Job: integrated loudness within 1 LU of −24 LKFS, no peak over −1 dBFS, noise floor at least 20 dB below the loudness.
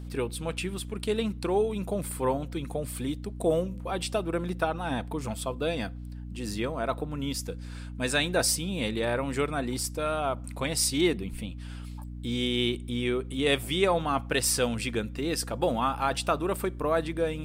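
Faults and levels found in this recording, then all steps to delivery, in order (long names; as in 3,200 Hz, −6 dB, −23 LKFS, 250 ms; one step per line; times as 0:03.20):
mains hum 60 Hz; hum harmonics up to 300 Hz; level of the hum −37 dBFS; integrated loudness −29.0 LKFS; sample peak −11.0 dBFS; target loudness −24.0 LKFS
→ mains-hum notches 60/120/180/240/300 Hz
level +5 dB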